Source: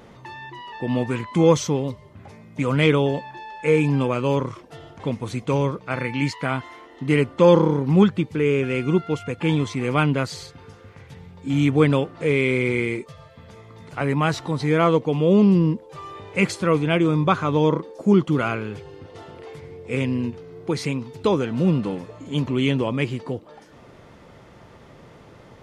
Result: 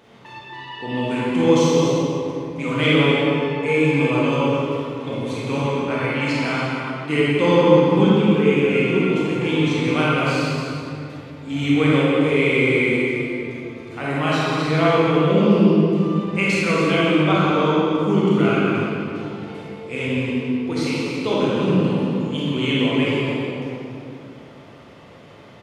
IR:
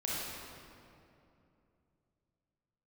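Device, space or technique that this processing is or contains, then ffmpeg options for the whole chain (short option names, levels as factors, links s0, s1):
stadium PA: -filter_complex "[0:a]highpass=f=180:p=1,equalizer=f=3000:t=o:w=1:g=5.5,aecho=1:1:174.9|282.8:0.316|0.282[s0];[1:a]atrim=start_sample=2205[s1];[s0][s1]afir=irnorm=-1:irlink=0,volume=0.708"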